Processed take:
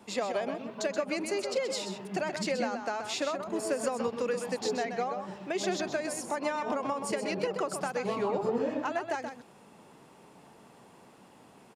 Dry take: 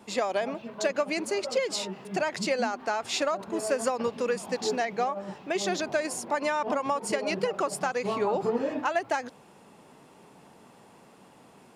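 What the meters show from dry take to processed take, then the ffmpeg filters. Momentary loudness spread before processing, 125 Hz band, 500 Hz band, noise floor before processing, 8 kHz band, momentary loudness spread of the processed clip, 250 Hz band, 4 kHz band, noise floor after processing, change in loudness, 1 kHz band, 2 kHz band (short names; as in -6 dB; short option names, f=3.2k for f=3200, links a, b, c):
3 LU, -1.0 dB, -3.0 dB, -55 dBFS, -3.5 dB, 4 LU, -1.5 dB, -3.5 dB, -56 dBFS, -3.5 dB, -4.5 dB, -4.5 dB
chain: -filter_complex "[0:a]acrossover=split=460[a][b];[b]acompressor=threshold=-32dB:ratio=2[c];[a][c]amix=inputs=2:normalize=0,asplit=2[d][e];[e]adelay=128.3,volume=-7dB,highshelf=f=4k:g=-2.89[f];[d][f]amix=inputs=2:normalize=0,volume=-2dB"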